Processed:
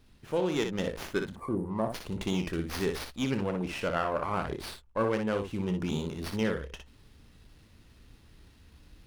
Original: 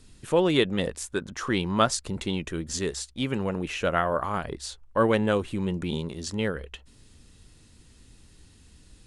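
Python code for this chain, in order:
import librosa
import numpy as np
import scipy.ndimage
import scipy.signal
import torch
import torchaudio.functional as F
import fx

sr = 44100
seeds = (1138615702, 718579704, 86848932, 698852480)

y = fx.rider(x, sr, range_db=4, speed_s=0.5)
y = fx.spec_erase(y, sr, start_s=1.33, length_s=0.62, low_hz=1200.0, high_hz=8900.0)
y = fx.room_early_taps(y, sr, ms=(27, 60), db=(-13.0, -6.5))
y = fx.running_max(y, sr, window=5)
y = y * librosa.db_to_amplitude(-5.0)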